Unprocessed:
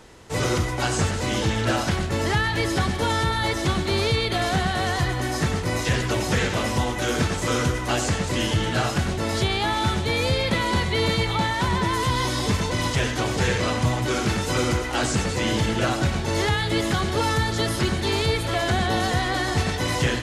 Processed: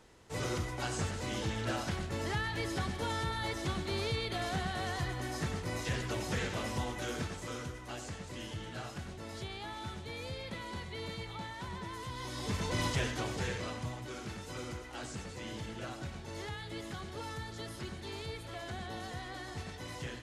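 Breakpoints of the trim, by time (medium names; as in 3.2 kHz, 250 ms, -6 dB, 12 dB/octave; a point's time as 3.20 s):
6.95 s -12.5 dB
7.68 s -19.5 dB
12.14 s -19.5 dB
12.79 s -8 dB
14.08 s -19.5 dB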